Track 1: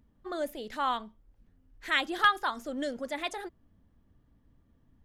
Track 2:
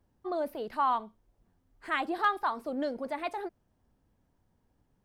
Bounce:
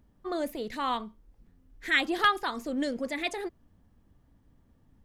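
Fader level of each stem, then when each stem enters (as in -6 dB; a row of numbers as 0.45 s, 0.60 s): +1.5 dB, -0.5 dB; 0.00 s, 0.00 s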